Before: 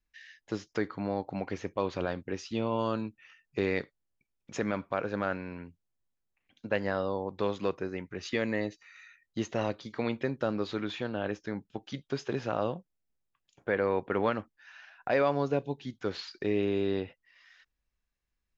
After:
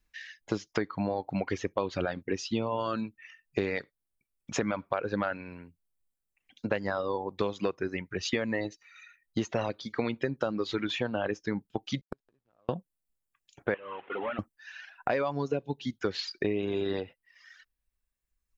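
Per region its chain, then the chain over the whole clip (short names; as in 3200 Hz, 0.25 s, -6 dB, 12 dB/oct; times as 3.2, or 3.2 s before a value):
12.01–12.69 backlash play -31.5 dBFS + flipped gate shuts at -35 dBFS, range -37 dB
13.74–14.39 delta modulation 16 kbps, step -42.5 dBFS + HPF 950 Hz 6 dB/oct
whole clip: reverb removal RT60 1.9 s; compressor 10:1, threshold -33 dBFS; gain +8 dB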